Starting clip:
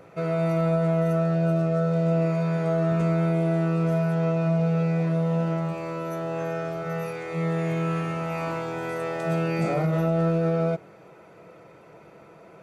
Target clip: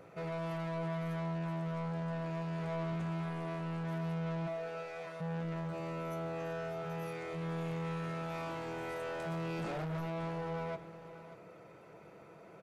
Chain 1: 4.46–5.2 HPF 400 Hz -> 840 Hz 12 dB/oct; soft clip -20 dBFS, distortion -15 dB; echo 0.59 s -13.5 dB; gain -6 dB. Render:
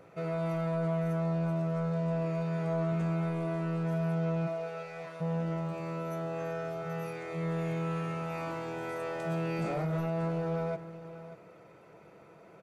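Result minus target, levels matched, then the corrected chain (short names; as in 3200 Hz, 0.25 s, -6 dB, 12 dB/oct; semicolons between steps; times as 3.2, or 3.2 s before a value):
soft clip: distortion -9 dB
4.46–5.2 HPF 400 Hz -> 840 Hz 12 dB/oct; soft clip -30 dBFS, distortion -6 dB; echo 0.59 s -13.5 dB; gain -6 dB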